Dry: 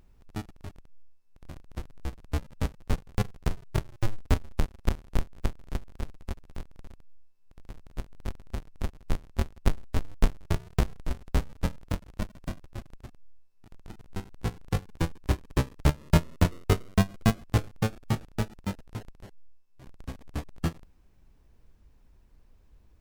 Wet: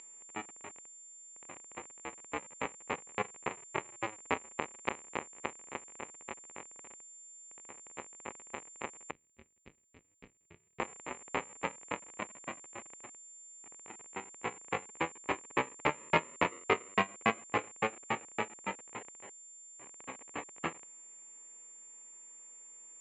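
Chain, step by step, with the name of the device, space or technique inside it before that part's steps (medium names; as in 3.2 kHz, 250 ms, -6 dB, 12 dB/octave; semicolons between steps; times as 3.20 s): toy sound module (decimation joined by straight lines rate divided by 6×; class-D stage that switches slowly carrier 7.2 kHz; cabinet simulation 640–3600 Hz, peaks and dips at 660 Hz -8 dB, 1.5 kHz -9 dB, 2.3 kHz +5 dB, 3.5 kHz -5 dB); 9.11–10.80 s: amplifier tone stack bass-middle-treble 10-0-1; trim +7 dB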